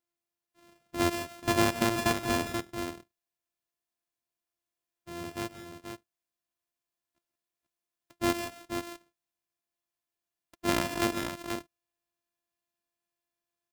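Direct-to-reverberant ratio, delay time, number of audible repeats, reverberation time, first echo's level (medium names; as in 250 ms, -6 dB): no reverb, 131 ms, 3, no reverb, -17.5 dB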